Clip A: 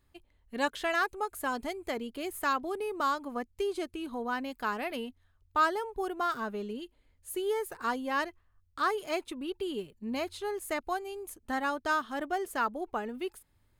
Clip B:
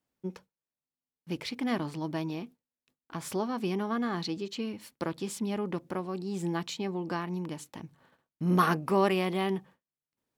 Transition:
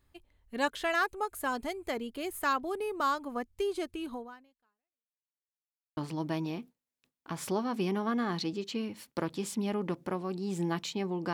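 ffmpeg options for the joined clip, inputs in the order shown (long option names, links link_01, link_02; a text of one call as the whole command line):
ffmpeg -i cue0.wav -i cue1.wav -filter_complex "[0:a]apad=whole_dur=11.33,atrim=end=11.33,asplit=2[link_01][link_02];[link_01]atrim=end=5.33,asetpts=PTS-STARTPTS,afade=type=out:start_time=4.13:duration=1.2:curve=exp[link_03];[link_02]atrim=start=5.33:end=5.97,asetpts=PTS-STARTPTS,volume=0[link_04];[1:a]atrim=start=1.81:end=7.17,asetpts=PTS-STARTPTS,afade=type=in:duration=0.004:curve=hsin[link_05];[link_03][link_04][link_05]concat=n=3:v=0:a=1" out.wav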